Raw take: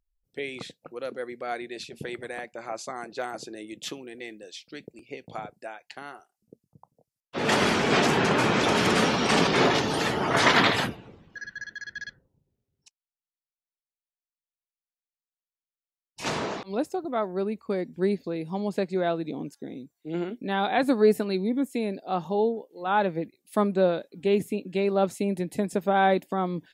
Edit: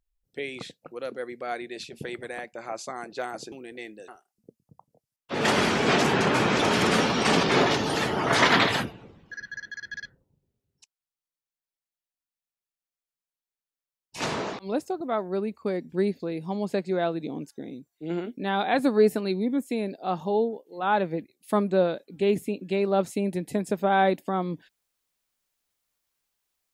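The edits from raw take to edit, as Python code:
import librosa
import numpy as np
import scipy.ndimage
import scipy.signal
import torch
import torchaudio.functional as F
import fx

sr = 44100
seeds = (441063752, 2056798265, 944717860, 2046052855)

y = fx.edit(x, sr, fx.cut(start_s=3.52, length_s=0.43),
    fx.cut(start_s=4.51, length_s=1.61), tone=tone)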